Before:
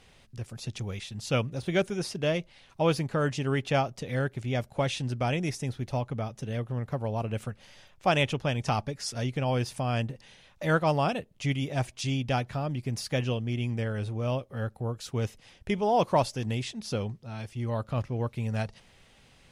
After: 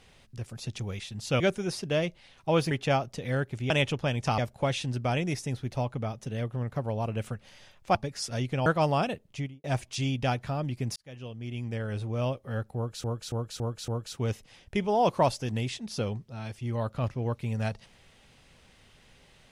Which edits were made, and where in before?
1.40–1.72 s: delete
3.03–3.55 s: delete
8.11–8.79 s: move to 4.54 s
9.50–10.72 s: delete
11.30–11.70 s: studio fade out
13.02–14.12 s: fade in
14.82–15.10 s: loop, 5 plays

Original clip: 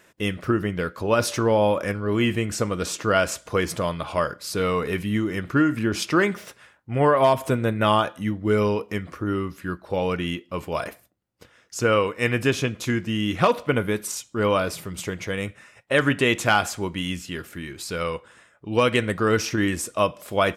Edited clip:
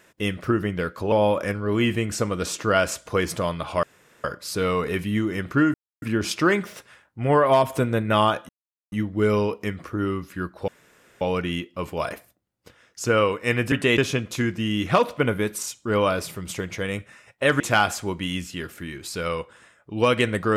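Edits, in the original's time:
1.12–1.52 s: delete
4.23 s: insert room tone 0.41 s
5.73 s: insert silence 0.28 s
8.20 s: insert silence 0.43 s
9.96 s: insert room tone 0.53 s
16.09–16.35 s: move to 12.47 s

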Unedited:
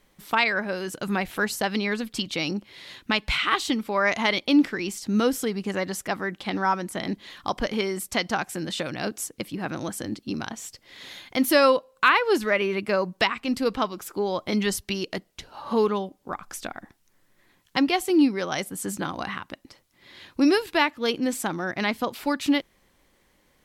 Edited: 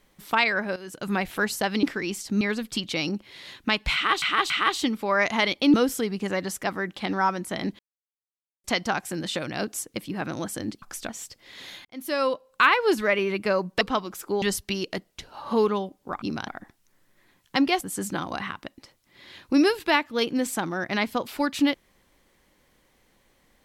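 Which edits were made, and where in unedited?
0.76–1.14 s: fade in, from -13.5 dB
3.36–3.64 s: loop, 3 plays
4.60–5.18 s: move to 1.83 s
7.23–8.08 s: mute
10.26–10.52 s: swap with 16.42–16.69 s
11.28–12.08 s: fade in
13.24–13.68 s: delete
14.29–14.62 s: delete
18.02–18.68 s: delete

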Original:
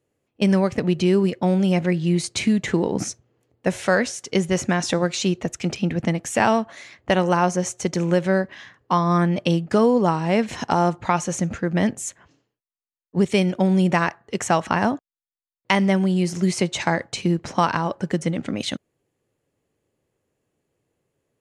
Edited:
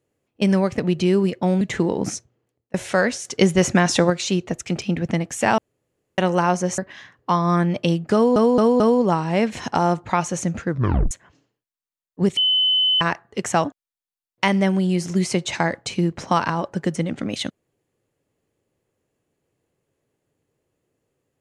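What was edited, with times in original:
1.61–2.55 s: delete
3.08–3.68 s: fade out
4.19–5.04 s: gain +4.5 dB
6.52–7.12 s: room tone
7.72–8.40 s: delete
9.76 s: stutter 0.22 s, 4 plays
11.65 s: tape stop 0.42 s
13.33–13.97 s: bleep 3.03 kHz -15 dBFS
14.61–14.92 s: delete

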